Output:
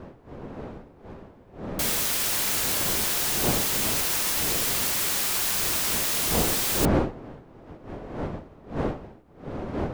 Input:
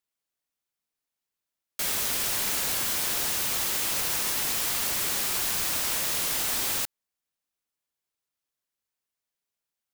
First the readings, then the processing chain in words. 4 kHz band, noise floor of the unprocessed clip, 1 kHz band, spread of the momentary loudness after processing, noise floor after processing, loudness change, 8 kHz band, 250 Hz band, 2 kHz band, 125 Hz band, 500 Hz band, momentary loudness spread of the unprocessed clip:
+2.0 dB, under -85 dBFS, +4.5 dB, 18 LU, -51 dBFS, +1.5 dB, +2.0 dB, +14.0 dB, +2.5 dB, +14.0 dB, +11.0 dB, 2 LU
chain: wind noise 470 Hz -35 dBFS; trim +2 dB

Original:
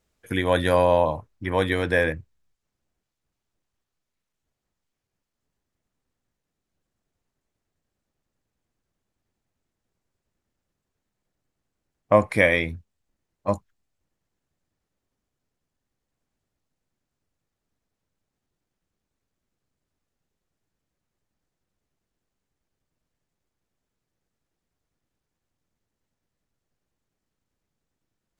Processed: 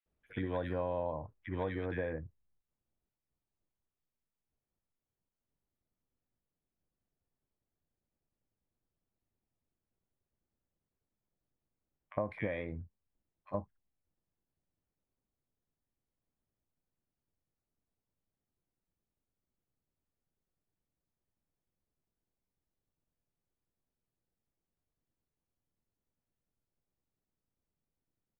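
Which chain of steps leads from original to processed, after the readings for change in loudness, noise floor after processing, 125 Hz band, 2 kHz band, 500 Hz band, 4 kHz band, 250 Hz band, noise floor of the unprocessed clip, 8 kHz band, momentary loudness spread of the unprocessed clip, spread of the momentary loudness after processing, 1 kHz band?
-16.0 dB, under -85 dBFS, -12.5 dB, -21.0 dB, -16.0 dB, -24.0 dB, -13.0 dB, -84 dBFS, no reading, 13 LU, 11 LU, -17.5 dB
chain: compression 6:1, threshold -22 dBFS, peak gain reduction 11 dB; distance through air 500 m; bands offset in time highs, lows 60 ms, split 1.6 kHz; trim -7.5 dB

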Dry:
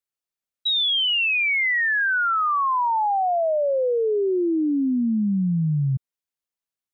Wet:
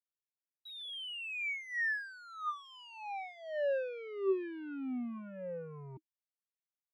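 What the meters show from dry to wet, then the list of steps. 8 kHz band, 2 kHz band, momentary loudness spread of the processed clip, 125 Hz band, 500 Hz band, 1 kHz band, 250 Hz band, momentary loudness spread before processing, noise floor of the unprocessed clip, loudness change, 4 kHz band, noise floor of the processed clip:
no reading, -16.5 dB, 14 LU, -27.5 dB, -14.0 dB, -22.0 dB, -19.0 dB, 4 LU, under -85 dBFS, -17.5 dB, -22.0 dB, under -85 dBFS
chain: waveshaping leveller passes 3; talking filter e-u 1.1 Hz; trim -6.5 dB

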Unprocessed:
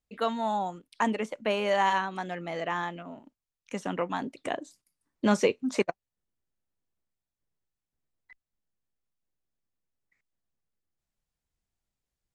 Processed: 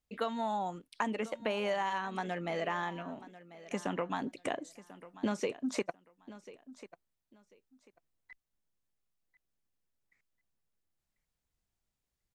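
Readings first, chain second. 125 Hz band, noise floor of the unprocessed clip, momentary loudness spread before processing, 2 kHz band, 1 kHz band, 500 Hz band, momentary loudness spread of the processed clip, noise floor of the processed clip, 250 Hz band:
-5.0 dB, under -85 dBFS, 12 LU, -6.0 dB, -6.5 dB, -6.0 dB, 19 LU, under -85 dBFS, -6.0 dB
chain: compression 6:1, threshold -30 dBFS, peak gain reduction 12.5 dB; feedback delay 1042 ms, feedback 21%, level -17 dB

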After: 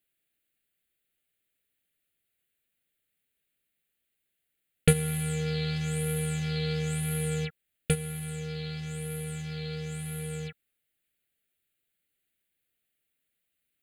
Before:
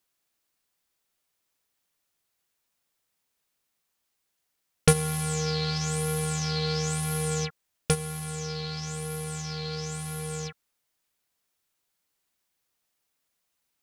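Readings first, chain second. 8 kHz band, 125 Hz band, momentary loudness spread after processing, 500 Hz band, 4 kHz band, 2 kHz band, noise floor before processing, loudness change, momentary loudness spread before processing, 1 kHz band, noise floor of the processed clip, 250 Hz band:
-5.5 dB, -0.5 dB, 9 LU, -3.0 dB, -5.5 dB, -1.0 dB, -79 dBFS, -2.0 dB, 8 LU, -9.0 dB, -81 dBFS, -0.5 dB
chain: static phaser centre 2.4 kHz, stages 4

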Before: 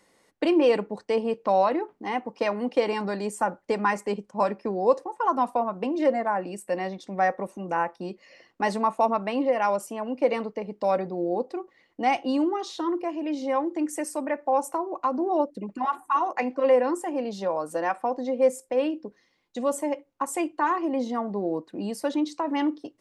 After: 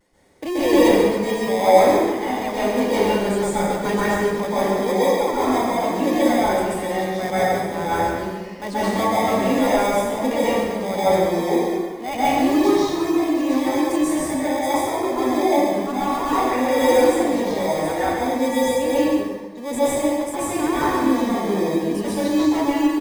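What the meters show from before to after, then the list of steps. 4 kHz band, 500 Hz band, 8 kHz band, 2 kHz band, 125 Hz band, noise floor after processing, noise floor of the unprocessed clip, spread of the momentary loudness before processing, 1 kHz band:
+11.0 dB, +6.5 dB, +10.5 dB, +7.5 dB, +10.5 dB, -30 dBFS, -66 dBFS, 8 LU, +5.0 dB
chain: vibrato 0.51 Hz 24 cents; in parallel at -3 dB: sample-and-hold 31×; on the sum: delay 141 ms -10 dB; transient shaper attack -4 dB, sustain +6 dB; plate-style reverb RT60 1.3 s, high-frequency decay 0.65×, pre-delay 115 ms, DRR -9 dB; trim -6.5 dB

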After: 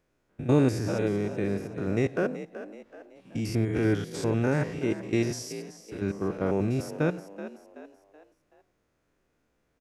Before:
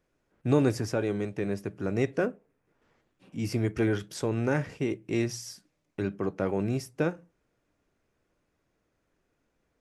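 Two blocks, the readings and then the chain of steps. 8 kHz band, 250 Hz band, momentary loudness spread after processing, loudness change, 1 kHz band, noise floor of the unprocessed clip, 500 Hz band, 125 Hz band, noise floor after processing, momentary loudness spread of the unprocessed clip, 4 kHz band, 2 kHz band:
+0.5 dB, +2.0 dB, 16 LU, +1.5 dB, +1.0 dB, -77 dBFS, +1.5 dB, +2.5 dB, -74 dBFS, 10 LU, +0.5 dB, +0.5 dB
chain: spectrogram pixelated in time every 100 ms; frequency-shifting echo 378 ms, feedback 41%, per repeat +51 Hz, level -13 dB; trim +3 dB

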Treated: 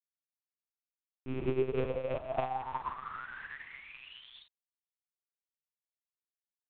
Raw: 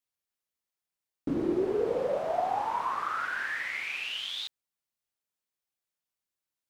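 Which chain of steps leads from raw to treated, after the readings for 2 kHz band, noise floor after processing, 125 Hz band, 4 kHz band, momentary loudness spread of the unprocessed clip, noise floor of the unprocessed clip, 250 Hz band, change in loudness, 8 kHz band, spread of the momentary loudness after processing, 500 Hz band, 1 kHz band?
-11.5 dB, under -85 dBFS, +5.0 dB, -15.5 dB, 6 LU, under -85 dBFS, -7.0 dB, -5.5 dB, under -25 dB, 18 LU, -4.5 dB, -7.5 dB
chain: rattle on loud lows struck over -45 dBFS, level -33 dBFS; monotone LPC vocoder at 8 kHz 130 Hz; upward expansion 2.5:1, over -41 dBFS

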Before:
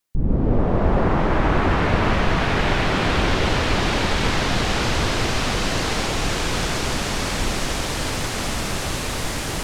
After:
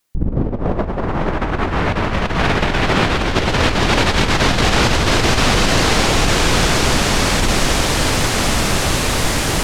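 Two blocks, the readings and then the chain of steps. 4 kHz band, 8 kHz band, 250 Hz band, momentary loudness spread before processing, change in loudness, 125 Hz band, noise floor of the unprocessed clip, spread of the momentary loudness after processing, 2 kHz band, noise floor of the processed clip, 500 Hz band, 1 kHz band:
+7.0 dB, +8.0 dB, +4.5 dB, 5 LU, +5.5 dB, +4.5 dB, -26 dBFS, 7 LU, +6.0 dB, -21 dBFS, +4.5 dB, +5.0 dB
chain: compressor with a negative ratio -21 dBFS, ratio -0.5; trim +6.5 dB

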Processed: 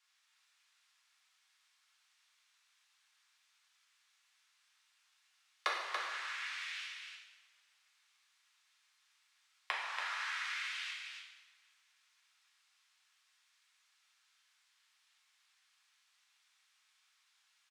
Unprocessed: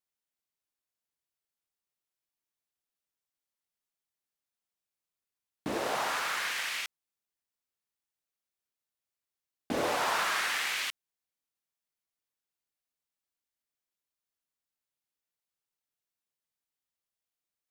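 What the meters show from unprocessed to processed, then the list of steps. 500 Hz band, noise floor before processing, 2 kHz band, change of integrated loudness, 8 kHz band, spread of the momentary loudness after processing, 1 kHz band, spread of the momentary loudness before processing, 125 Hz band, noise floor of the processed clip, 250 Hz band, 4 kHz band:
-17.5 dB, under -85 dBFS, -6.0 dB, -8.5 dB, -13.5 dB, 11 LU, -9.5 dB, 8 LU, under -40 dB, -75 dBFS, under -25 dB, -7.0 dB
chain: high-pass 1 kHz 12 dB/octave; treble shelf 9.9 kHz -10.5 dB; inverted gate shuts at -35 dBFS, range -32 dB; in parallel at -6.5 dB: one-sided clip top -49.5 dBFS, bottom -35.5 dBFS; on the sum: frequency shift +320 Hz; distance through air 61 m; on a send: delay 284 ms -5.5 dB; on the sum: two-slope reverb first 0.95 s, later 2.9 s, from -23 dB, DRR -4 dB; trim +15 dB

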